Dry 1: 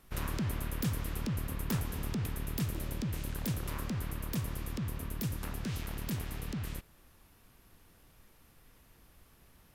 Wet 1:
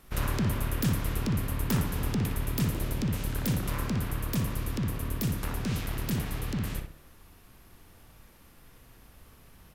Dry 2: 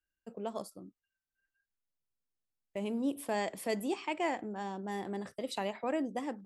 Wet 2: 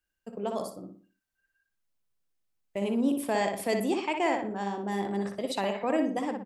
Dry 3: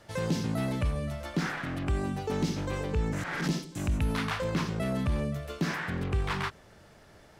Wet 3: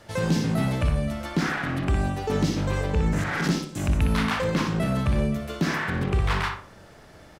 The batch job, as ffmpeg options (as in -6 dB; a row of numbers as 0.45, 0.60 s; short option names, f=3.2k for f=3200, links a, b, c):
-filter_complex "[0:a]asplit=2[a][b];[b]adelay=60,lowpass=f=2.6k:p=1,volume=-4dB,asplit=2[c][d];[d]adelay=60,lowpass=f=2.6k:p=1,volume=0.39,asplit=2[e][f];[f]adelay=60,lowpass=f=2.6k:p=1,volume=0.39,asplit=2[g][h];[h]adelay=60,lowpass=f=2.6k:p=1,volume=0.39,asplit=2[i][j];[j]adelay=60,lowpass=f=2.6k:p=1,volume=0.39[k];[a][c][e][g][i][k]amix=inputs=6:normalize=0,volume=5dB"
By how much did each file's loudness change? +6.0, +6.5, +6.0 LU